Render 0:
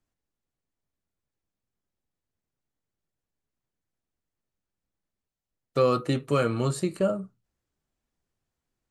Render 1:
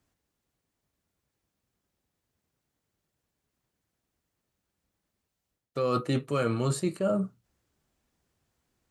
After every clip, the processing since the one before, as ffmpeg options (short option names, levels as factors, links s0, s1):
-af "highpass=41,areverse,acompressor=threshold=0.0251:ratio=10,areverse,volume=2.51"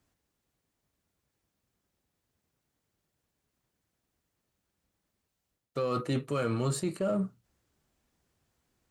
-filter_complex "[0:a]asplit=2[s0][s1];[s1]asoftclip=type=hard:threshold=0.0188,volume=0.335[s2];[s0][s2]amix=inputs=2:normalize=0,alimiter=limit=0.1:level=0:latency=1:release=37,volume=0.794"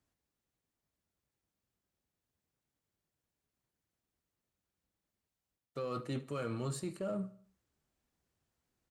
-af "aecho=1:1:74|148|222|296:0.119|0.0535|0.0241|0.0108,volume=0.398"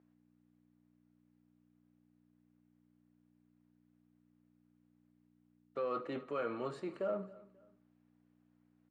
-af "aeval=exprs='val(0)+0.00141*(sin(2*PI*60*n/s)+sin(2*PI*2*60*n/s)/2+sin(2*PI*3*60*n/s)/3+sin(2*PI*4*60*n/s)/4+sin(2*PI*5*60*n/s)/5)':c=same,highpass=360,lowpass=2200,aecho=1:1:268|536:0.0944|0.0293,volume=1.5"